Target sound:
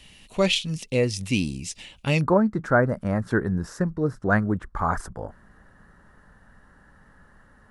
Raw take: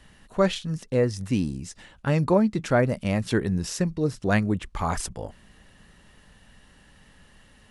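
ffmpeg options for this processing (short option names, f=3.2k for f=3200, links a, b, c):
-af "asetnsamples=n=441:p=0,asendcmd='2.21 highshelf g -10',highshelf=f=2k:t=q:w=3:g=6.5"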